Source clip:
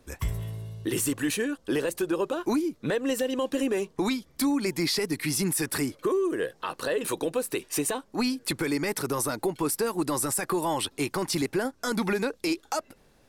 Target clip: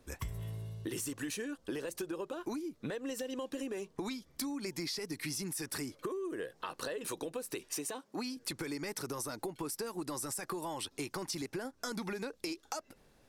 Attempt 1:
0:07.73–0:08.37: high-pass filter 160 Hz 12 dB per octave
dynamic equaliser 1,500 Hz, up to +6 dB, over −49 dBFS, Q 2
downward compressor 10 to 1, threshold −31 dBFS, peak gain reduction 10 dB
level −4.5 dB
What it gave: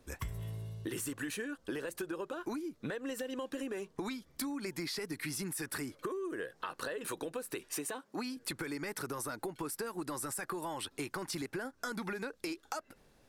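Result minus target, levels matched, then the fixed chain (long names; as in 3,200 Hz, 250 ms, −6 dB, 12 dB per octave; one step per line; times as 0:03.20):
2,000 Hz band +3.0 dB
0:07.73–0:08.37: high-pass filter 160 Hz 12 dB per octave
dynamic equaliser 5,700 Hz, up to +6 dB, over −49 dBFS, Q 2
downward compressor 10 to 1, threshold −31 dBFS, peak gain reduction 10.5 dB
level −4.5 dB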